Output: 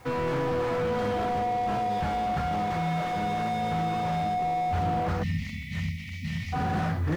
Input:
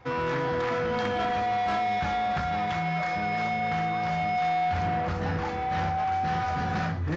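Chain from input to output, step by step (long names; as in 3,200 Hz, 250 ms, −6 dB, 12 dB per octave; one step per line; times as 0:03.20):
bit reduction 10 bits
time-frequency box erased 0:05.23–0:06.53, 260–1,800 Hz
slew-rate limiting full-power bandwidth 28 Hz
level +2 dB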